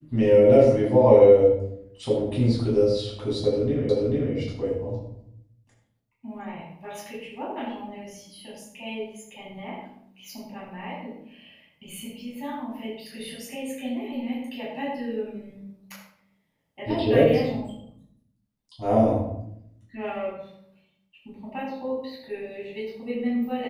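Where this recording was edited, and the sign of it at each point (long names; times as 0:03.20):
0:03.89: the same again, the last 0.44 s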